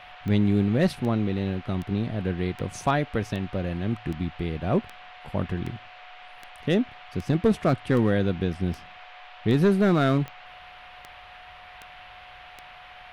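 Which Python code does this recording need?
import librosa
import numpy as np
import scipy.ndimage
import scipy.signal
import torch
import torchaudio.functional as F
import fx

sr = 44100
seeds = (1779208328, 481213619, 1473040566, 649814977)

y = fx.fix_declip(x, sr, threshold_db=-13.0)
y = fx.fix_declick_ar(y, sr, threshold=10.0)
y = fx.notch(y, sr, hz=730.0, q=30.0)
y = fx.noise_reduce(y, sr, print_start_s=11.2, print_end_s=11.7, reduce_db=24.0)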